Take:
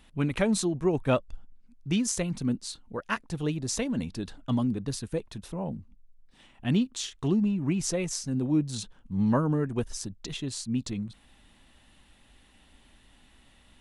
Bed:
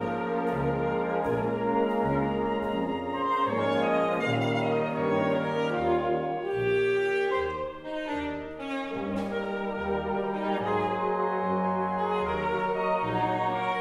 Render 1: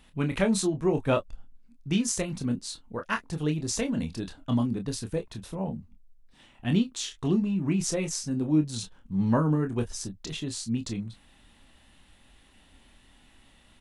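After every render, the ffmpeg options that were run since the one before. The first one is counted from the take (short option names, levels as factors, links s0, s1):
-af "aecho=1:1:26|37:0.447|0.133"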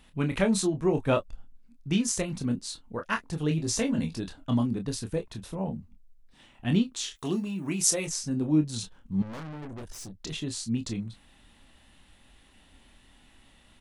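-filter_complex "[0:a]asettb=1/sr,asplit=3[s0][s1][s2];[s0]atrim=end=3.494[s3];[s1]atrim=start=3.49:end=4.18,asetpts=PTS-STARTPTS,afade=t=in:d=0.004:c=qsin,afade=t=out:st=0.686:d=0.004:c=qsin,asplit=2[s4][s5];[s5]adelay=18,volume=0.562[s6];[s4][s6]amix=inputs=2:normalize=0,atrim=end_sample=30429[s7];[s2]atrim=start=4.176[s8];[s3][s7]acrossfade=d=0.004:c1=hsin:c2=qsin[s9];[s9][s8]acrossfade=d=0.004:c1=qsin:c2=hsin,asplit=3[s10][s11][s12];[s10]afade=t=out:st=7.15:d=0.02[s13];[s11]aemphasis=mode=production:type=bsi,afade=t=in:st=7.15:d=0.02,afade=t=out:st=8.06:d=0.02[s14];[s12]afade=t=in:st=8.06:d=0.02[s15];[s13][s14][s15]amix=inputs=3:normalize=0,asettb=1/sr,asplit=3[s16][s17][s18];[s16]atrim=end=9.224[s19];[s17]atrim=start=9.22:end=10.23,asetpts=PTS-STARTPTS,afade=t=in:d=0.004:c=qsin,afade=t=out:st=1.006:d=0.004:c=qsin,aeval=exprs='(tanh(79.4*val(0)+0.5)-tanh(0.5))/79.4':c=same[s20];[s18]atrim=start=10.226[s21];[s19][s20]acrossfade=d=0.004:c1=hsin:c2=qsin[s22];[s22][s21]acrossfade=d=0.004:c1=qsin:c2=hsin"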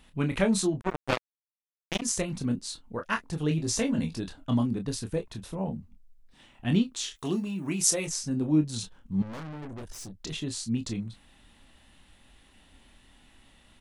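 -filter_complex "[0:a]asettb=1/sr,asplit=3[s0][s1][s2];[s0]atrim=end=0.814[s3];[s1]atrim=start=0.81:end=2.02,asetpts=PTS-STARTPTS,afade=t=in:d=0.004:c=qsin,afade=t=out:st=1.206:d=0.004:c=qsin,acrusher=bits=2:mix=0:aa=0.5[s4];[s2]atrim=start=2.016[s5];[s3][s4]acrossfade=d=0.004:c1=hsin:c2=qsin[s6];[s6][s5]acrossfade=d=0.004:c1=qsin:c2=hsin"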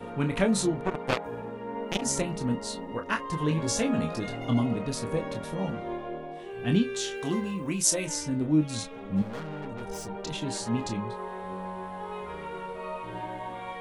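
-filter_complex "[1:a]volume=0.335[s0];[0:a][s0]amix=inputs=2:normalize=0"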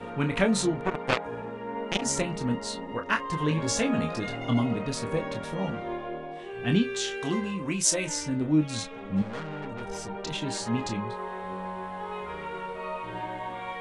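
-af "lowpass=f=9700:w=0.5412,lowpass=f=9700:w=1.3066,equalizer=f=2000:w=0.62:g=4"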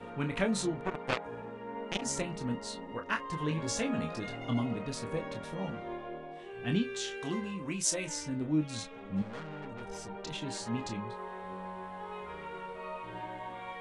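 -af "volume=0.473"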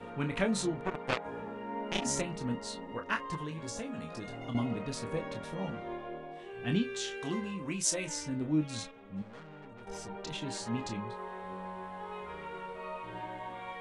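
-filter_complex "[0:a]asettb=1/sr,asplit=3[s0][s1][s2];[s0]atrim=end=1.224[s3];[s1]atrim=start=1.22:end=2.21,asetpts=PTS-STARTPTS,afade=t=in:d=0.004:c=qsin,afade=t=out:st=0.986:d=0.004:c=qsin,asplit=2[s4][s5];[s5]adelay=29,volume=0.708[s6];[s4][s6]amix=inputs=2:normalize=0,atrim=end_sample=43659[s7];[s2]atrim=start=2.206[s8];[s3][s7]acrossfade=d=0.004:c1=hsin:c2=qsin[s9];[s9][s8]acrossfade=d=0.004:c1=qsin:c2=hsin,asettb=1/sr,asplit=3[s10][s11][s12];[s10]atrim=end=3.354[s13];[s11]atrim=start=3.35:end=4.55,asetpts=PTS-STARTPTS,afade=t=in:d=0.004:c=qsin,afade=t=out:st=1.196:d=0.004:c=qsin,acrossover=split=1300|6000[s14][s15][s16];[s14]acompressor=threshold=0.0126:ratio=4[s17];[s15]acompressor=threshold=0.00282:ratio=4[s18];[s16]acompressor=threshold=0.00562:ratio=4[s19];[s17][s18][s19]amix=inputs=3:normalize=0[s20];[s12]atrim=start=4.546[s21];[s13][s20]acrossfade=d=0.004:c1=hsin:c2=qsin[s22];[s22][s21]acrossfade=d=0.004:c1=qsin:c2=hsin,asplit=3[s23][s24][s25];[s23]atrim=end=8.912[s26];[s24]atrim=start=8.908:end=9.872,asetpts=PTS-STARTPTS,volume=0.447[s27];[s25]atrim=start=9.868[s28];[s26][s27]acrossfade=d=0.004:c1=hsin:c2=hsin[s29];[s29][s28]acrossfade=d=0.004:c1=hsin:c2=hsin"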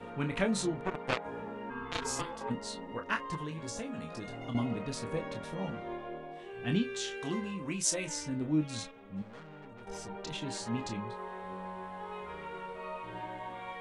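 -filter_complex "[0:a]asplit=3[s0][s1][s2];[s0]afade=t=out:st=1.69:d=0.02[s3];[s1]aeval=exprs='val(0)*sin(2*PI*680*n/s)':c=same,afade=t=in:st=1.69:d=0.02,afade=t=out:st=2.49:d=0.02[s4];[s2]afade=t=in:st=2.49:d=0.02[s5];[s3][s4][s5]amix=inputs=3:normalize=0"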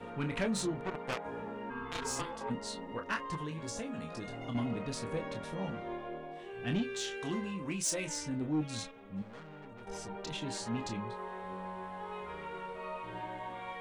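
-af "asoftclip=type=tanh:threshold=0.0501"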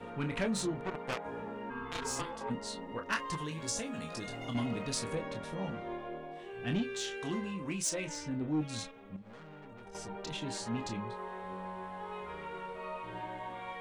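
-filter_complex "[0:a]asettb=1/sr,asplit=3[s0][s1][s2];[s0]atrim=end=3.124[s3];[s1]atrim=start=3.12:end=5.15,asetpts=PTS-STARTPTS,afade=t=in:d=0.004:c=qsin,afade=t=out:st=2.026:d=0.004:c=qsin,highshelf=f=2700:g=9[s4];[s2]atrim=start=5.146[s5];[s3][s4]acrossfade=d=0.004:c1=hsin:c2=qsin[s6];[s6][s5]acrossfade=d=0.004:c1=qsin:c2=hsin,asettb=1/sr,asplit=3[s7][s8][s9];[s7]atrim=end=7.894[s10];[s8]atrim=start=7.89:end=8.48,asetpts=PTS-STARTPTS,afade=t=in:d=0.004:c=qsin,afade=t=out:st=0.586:d=0.004:c=qsin,adynamicsmooth=sensitivity=3:basefreq=6300[s11];[s9]atrim=start=8.476[s12];[s10][s11]acrossfade=d=0.004:c1=hsin:c2=qsin[s13];[s13][s12]acrossfade=d=0.004:c1=qsin:c2=hsin,asettb=1/sr,asplit=3[s14][s15][s16];[s14]atrim=end=9.164[s17];[s15]atrim=start=9.16:end=9.95,asetpts=PTS-STARTPTS,afade=t=in:d=0.004:c=qsin,afade=t=out:st=0.786:d=0.004:c=qsin,acompressor=threshold=0.00501:ratio=12:attack=3.2:release=140:knee=1:detection=peak[s18];[s16]atrim=start=9.946[s19];[s17][s18]acrossfade=d=0.004:c1=hsin:c2=qsin[s20];[s20][s19]acrossfade=d=0.004:c1=qsin:c2=hsin"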